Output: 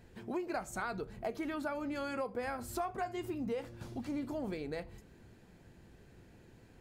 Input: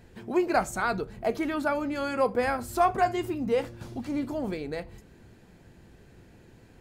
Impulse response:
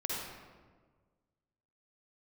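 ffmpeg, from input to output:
-af "acompressor=threshold=-29dB:ratio=6,volume=-5dB"

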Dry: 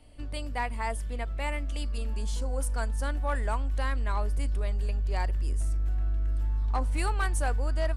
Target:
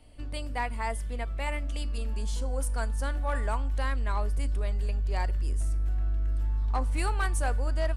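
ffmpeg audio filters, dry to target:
-af "bandreject=f=290.4:t=h:w=4,bandreject=f=580.8:t=h:w=4,bandreject=f=871.2:t=h:w=4,bandreject=f=1.1616k:t=h:w=4,bandreject=f=1.452k:t=h:w=4,bandreject=f=1.7424k:t=h:w=4,bandreject=f=2.0328k:t=h:w=4,bandreject=f=2.3232k:t=h:w=4,bandreject=f=2.6136k:t=h:w=4,bandreject=f=2.904k:t=h:w=4,bandreject=f=3.1944k:t=h:w=4,bandreject=f=3.4848k:t=h:w=4,bandreject=f=3.7752k:t=h:w=4,bandreject=f=4.0656k:t=h:w=4,bandreject=f=4.356k:t=h:w=4,bandreject=f=4.6464k:t=h:w=4,bandreject=f=4.9368k:t=h:w=4,bandreject=f=5.2272k:t=h:w=4,bandreject=f=5.5176k:t=h:w=4,bandreject=f=5.808k:t=h:w=4,bandreject=f=6.0984k:t=h:w=4,bandreject=f=6.3888k:t=h:w=4,bandreject=f=6.6792k:t=h:w=4,bandreject=f=6.9696k:t=h:w=4,bandreject=f=7.26k:t=h:w=4,bandreject=f=7.5504k:t=h:w=4,bandreject=f=7.8408k:t=h:w=4,bandreject=f=8.1312k:t=h:w=4,bandreject=f=8.4216k:t=h:w=4,bandreject=f=8.712k:t=h:w=4,bandreject=f=9.0024k:t=h:w=4,bandreject=f=9.2928k:t=h:w=4,bandreject=f=9.5832k:t=h:w=4,bandreject=f=9.8736k:t=h:w=4,bandreject=f=10.164k:t=h:w=4,bandreject=f=10.4544k:t=h:w=4"

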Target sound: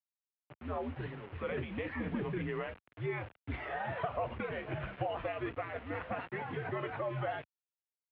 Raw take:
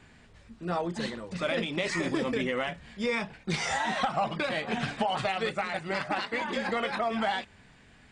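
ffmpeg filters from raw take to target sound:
-af "highshelf=f=2.1k:g=-9,acrusher=bits=6:mix=0:aa=0.000001,highpass=f=160:t=q:w=0.5412,highpass=f=160:t=q:w=1.307,lowpass=f=3k:t=q:w=0.5176,lowpass=f=3k:t=q:w=0.7071,lowpass=f=3k:t=q:w=1.932,afreqshift=-92,volume=-6dB"

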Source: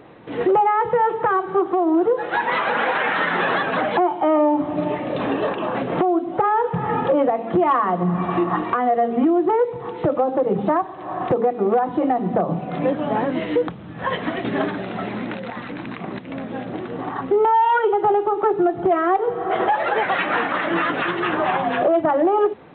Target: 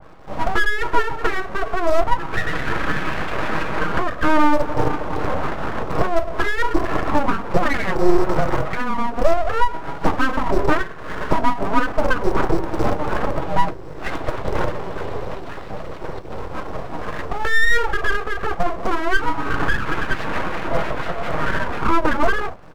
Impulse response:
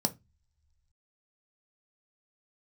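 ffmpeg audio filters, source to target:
-filter_complex "[0:a]bandreject=f=2k:w=6.5,aecho=1:1:6.3:0.65,acrossover=split=240|550|1500[a][b][c][d];[a]acrusher=bits=5:dc=4:mix=0:aa=0.000001[e];[e][b][c][d]amix=inputs=4:normalize=0[f];[1:a]atrim=start_sample=2205[g];[f][g]afir=irnorm=-1:irlink=0,aeval=exprs='abs(val(0))':c=same,adynamicequalizer=threshold=0.0501:dfrequency=2700:dqfactor=0.7:tfrequency=2700:tqfactor=0.7:attack=5:release=100:ratio=0.375:range=2:mode=cutabove:tftype=highshelf,volume=-8dB"

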